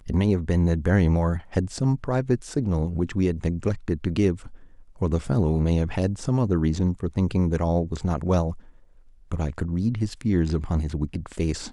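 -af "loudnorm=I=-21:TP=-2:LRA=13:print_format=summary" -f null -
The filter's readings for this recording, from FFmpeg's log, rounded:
Input Integrated:    -25.2 LUFS
Input True Peak:      -9.5 dBTP
Input LRA:             3.5 LU
Input Threshold:     -35.5 LUFS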